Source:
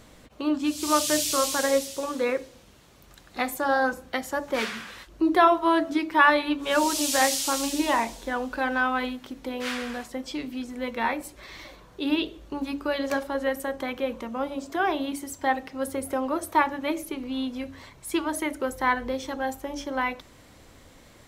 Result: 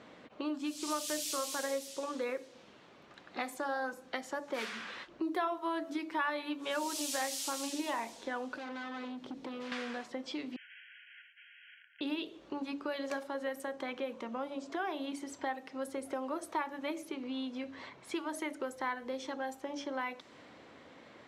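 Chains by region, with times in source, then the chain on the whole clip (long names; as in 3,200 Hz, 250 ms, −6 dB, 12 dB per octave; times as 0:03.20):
0:08.55–0:09.72: parametric band 1,800 Hz −11.5 dB 2.6 octaves + hard clipping −37.5 dBFS + multiband upward and downward compressor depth 100%
0:10.56–0:12.01: downward compressor, threshold −34 dBFS + wrap-around overflow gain 43 dB + linear-phase brick-wall band-pass 1,400–3,300 Hz
whole clip: high-pass filter 220 Hz 12 dB per octave; low-pass that shuts in the quiet parts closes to 2,900 Hz, open at −22 dBFS; downward compressor 2.5 to 1, threshold −39 dBFS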